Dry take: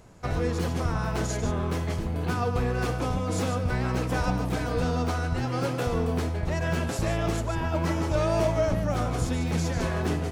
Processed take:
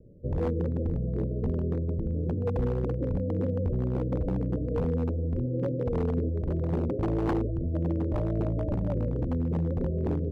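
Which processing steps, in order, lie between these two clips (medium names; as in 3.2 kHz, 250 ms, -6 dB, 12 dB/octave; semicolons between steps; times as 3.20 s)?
steep low-pass 580 Hz 96 dB/octave; 6.21–7.46 s: peaking EQ 370 Hz +1.5 dB -> +11 dB 0.83 oct; wavefolder -21 dBFS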